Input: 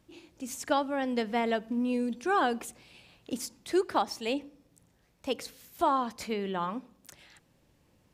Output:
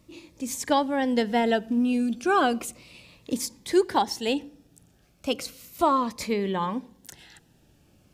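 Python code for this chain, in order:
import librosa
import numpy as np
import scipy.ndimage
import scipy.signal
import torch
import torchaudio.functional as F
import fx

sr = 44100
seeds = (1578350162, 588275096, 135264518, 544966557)

y = fx.notch_cascade(x, sr, direction='falling', hz=0.34)
y = y * librosa.db_to_amplitude(7.0)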